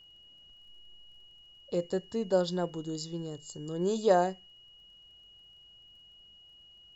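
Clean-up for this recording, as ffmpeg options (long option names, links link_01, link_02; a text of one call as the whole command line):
ffmpeg -i in.wav -af "adeclick=threshold=4,bandreject=frequency=2900:width=30" out.wav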